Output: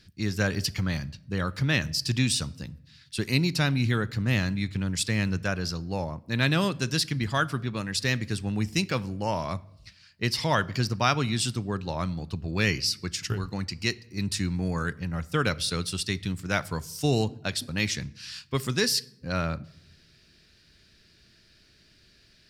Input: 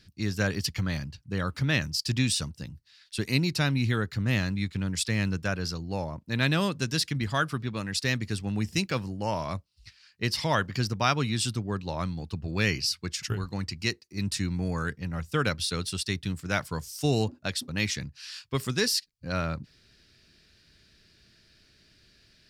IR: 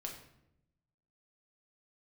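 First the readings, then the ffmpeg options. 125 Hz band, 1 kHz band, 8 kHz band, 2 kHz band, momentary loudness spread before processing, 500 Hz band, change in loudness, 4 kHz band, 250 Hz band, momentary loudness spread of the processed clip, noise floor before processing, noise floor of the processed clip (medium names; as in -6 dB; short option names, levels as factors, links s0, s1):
+1.0 dB, +1.5 dB, +1.0 dB, +1.0 dB, 8 LU, +1.0 dB, +1.0 dB, +1.0 dB, +1.5 dB, 8 LU, -62 dBFS, -60 dBFS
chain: -filter_complex "[0:a]asplit=2[s0][s1];[1:a]atrim=start_sample=2205[s2];[s1][s2]afir=irnorm=-1:irlink=0,volume=0.251[s3];[s0][s3]amix=inputs=2:normalize=0"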